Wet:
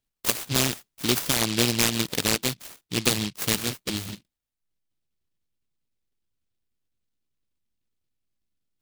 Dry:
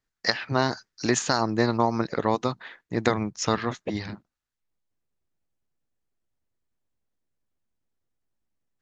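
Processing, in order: noise-modulated delay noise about 3400 Hz, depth 0.38 ms

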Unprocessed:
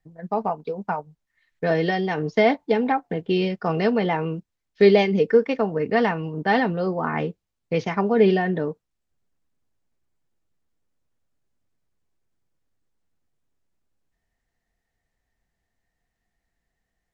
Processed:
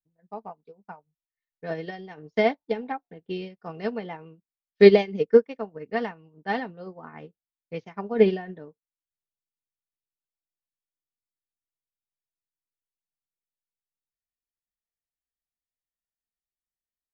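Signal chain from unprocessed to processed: upward expander 2.5:1, over -31 dBFS; gain +3.5 dB

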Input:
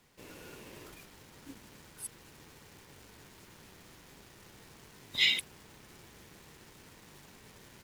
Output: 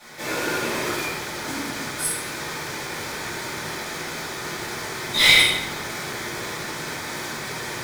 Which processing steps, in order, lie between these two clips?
notch 2800 Hz, Q 7.4; overdrive pedal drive 30 dB, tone 6900 Hz, clips at -10 dBFS; shoebox room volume 410 m³, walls mixed, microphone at 7.5 m; gain -10.5 dB

